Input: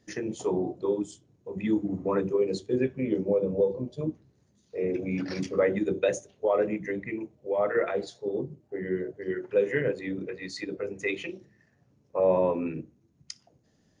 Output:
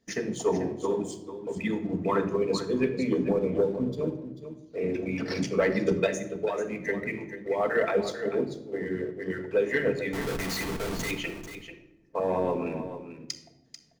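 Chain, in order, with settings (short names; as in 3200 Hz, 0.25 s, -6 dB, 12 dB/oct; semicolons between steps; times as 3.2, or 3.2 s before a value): harmonic-percussive split harmonic -11 dB; 6.06–6.81 compressor, threshold -33 dBFS, peak gain reduction 9 dB; sample leveller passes 1; 10.13–11.11 Schmitt trigger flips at -45.5 dBFS; echo 0.441 s -11 dB; shoebox room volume 3200 m³, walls furnished, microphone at 1.6 m; gain +1.5 dB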